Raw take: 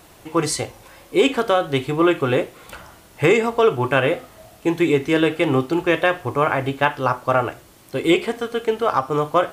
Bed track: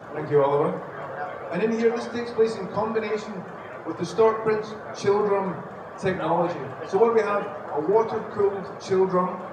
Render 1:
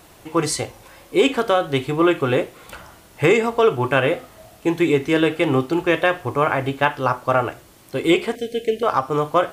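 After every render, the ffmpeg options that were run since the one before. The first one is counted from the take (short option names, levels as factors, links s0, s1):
-filter_complex "[0:a]asettb=1/sr,asplit=3[s0][s1][s2];[s0]atrim=end=8.354[s3];[s1]atrim=start=8.35:end=8.83,asetpts=PTS-STARTPTS,afade=t=in:d=0.004:c=qsin,afade=t=out:st=0.476:d=0.004:c=qsin,asuperstop=centerf=1100:order=8:qfactor=0.91[s4];[s2]atrim=start=8.826[s5];[s3][s4]acrossfade=d=0.004:c1=hsin:c2=qsin[s6];[s6][s5]acrossfade=d=0.004:c1=qsin:c2=hsin"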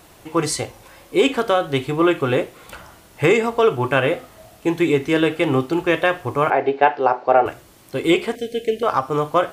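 -filter_complex "[0:a]asettb=1/sr,asplit=3[s0][s1][s2];[s0]atrim=end=6.504[s3];[s1]atrim=start=6.5:end=7.46,asetpts=PTS-STARTPTS,afade=t=in:d=0.004:c=qsin,afade=t=out:st=0.956:d=0.004:c=qsin,highpass=280,equalizer=f=410:t=q:w=4:g=10,equalizer=f=750:t=q:w=4:g=10,equalizer=f=1200:t=q:w=4:g=-6,equalizer=f=3300:t=q:w=4:g=-8,lowpass=f=4400:w=0.5412,lowpass=f=4400:w=1.3066[s4];[s2]atrim=start=7.456[s5];[s3][s4]acrossfade=d=0.004:c1=hsin:c2=qsin[s6];[s6][s5]acrossfade=d=0.004:c1=qsin:c2=hsin"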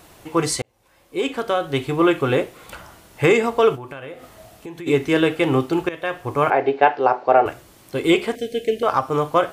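-filter_complex "[0:a]asplit=3[s0][s1][s2];[s0]afade=t=out:st=3.75:d=0.02[s3];[s1]acompressor=threshold=0.02:ratio=4:attack=3.2:release=140:knee=1:detection=peak,afade=t=in:st=3.75:d=0.02,afade=t=out:st=4.86:d=0.02[s4];[s2]afade=t=in:st=4.86:d=0.02[s5];[s3][s4][s5]amix=inputs=3:normalize=0,asplit=3[s6][s7][s8];[s6]atrim=end=0.62,asetpts=PTS-STARTPTS,afade=t=out:st=0.616:d=0.004:c=hsin[s9];[s7]atrim=start=0.62:end=5.89,asetpts=PTS-STARTPTS,afade=t=in:d=1.34,afade=t=out:st=5.266:d=0.004:c=hsin:silence=0.11885[s10];[s8]atrim=start=5.89,asetpts=PTS-STARTPTS,afade=t=in:d=0.5:silence=0.11885[s11];[s9][s10][s11]concat=n=3:v=0:a=1"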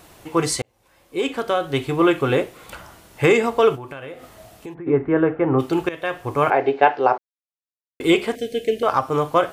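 -filter_complex "[0:a]asplit=3[s0][s1][s2];[s0]afade=t=out:st=4.73:d=0.02[s3];[s1]lowpass=f=1600:w=0.5412,lowpass=f=1600:w=1.3066,afade=t=in:st=4.73:d=0.02,afade=t=out:st=5.58:d=0.02[s4];[s2]afade=t=in:st=5.58:d=0.02[s5];[s3][s4][s5]amix=inputs=3:normalize=0,asplit=3[s6][s7][s8];[s6]atrim=end=7.18,asetpts=PTS-STARTPTS,afade=t=out:st=7.176:d=0.004:c=hsin[s9];[s7]atrim=start=7.18:end=8,asetpts=PTS-STARTPTS,volume=0[s10];[s8]atrim=start=8,asetpts=PTS-STARTPTS,afade=t=in:d=0.004:c=hsin[s11];[s9][s10][s11]concat=n=3:v=0:a=1"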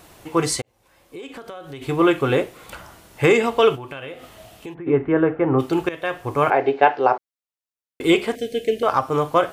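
-filter_complex "[0:a]asplit=3[s0][s1][s2];[s0]afade=t=out:st=0.6:d=0.02[s3];[s1]acompressor=threshold=0.0224:ratio=6:attack=3.2:release=140:knee=1:detection=peak,afade=t=in:st=0.6:d=0.02,afade=t=out:st=1.81:d=0.02[s4];[s2]afade=t=in:st=1.81:d=0.02[s5];[s3][s4][s5]amix=inputs=3:normalize=0,asettb=1/sr,asplit=3[s6][s7][s8];[s6]atrim=end=3.404[s9];[s7]atrim=start=3.4:end=5.12,asetpts=PTS-STARTPTS,afade=t=in:d=0.004:c=qsin,afade=t=out:st=1.716:d=0.004:c=qsin,equalizer=f=3000:t=o:w=0.66:g=6.5[s10];[s8]atrim=start=5.116[s11];[s9][s10]acrossfade=d=0.004:c1=hsin:c2=qsin[s12];[s12][s11]acrossfade=d=0.004:c1=qsin:c2=hsin"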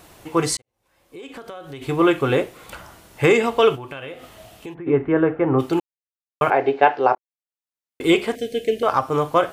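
-filter_complex "[0:a]asplit=5[s0][s1][s2][s3][s4];[s0]atrim=end=0.57,asetpts=PTS-STARTPTS,afade=t=out:st=0.566:d=0.004:c=hsin[s5];[s1]atrim=start=0.57:end=5.8,asetpts=PTS-STARTPTS,afade=t=in:d=0.8,afade=t=out:st=5.226:d=0.004:c=hsin[s6];[s2]atrim=start=5.8:end=6.41,asetpts=PTS-STARTPTS,volume=0[s7];[s3]atrim=start=6.41:end=7.15,asetpts=PTS-STARTPTS,afade=t=in:d=0.004:c=hsin,afade=t=out:st=0.736:d=0.004:c=hsin[s8];[s4]atrim=start=7.15,asetpts=PTS-STARTPTS,afade=t=in:d=0.87[s9];[s5][s6][s7][s8][s9]concat=n=5:v=0:a=1"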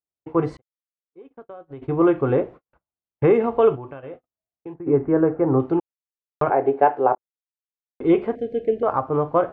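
-af "lowpass=1000,agate=range=0.002:threshold=0.0158:ratio=16:detection=peak"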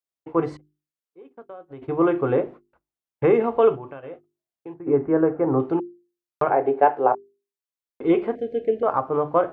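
-af "lowshelf=f=120:g=-9,bandreject=f=50:t=h:w=6,bandreject=f=100:t=h:w=6,bandreject=f=150:t=h:w=6,bandreject=f=200:t=h:w=6,bandreject=f=250:t=h:w=6,bandreject=f=300:t=h:w=6,bandreject=f=350:t=h:w=6,bandreject=f=400:t=h:w=6"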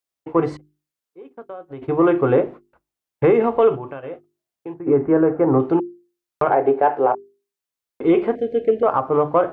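-af "alimiter=limit=0.266:level=0:latency=1:release=69,acontrast=33"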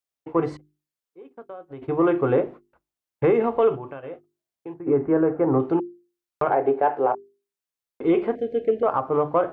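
-af "volume=0.631"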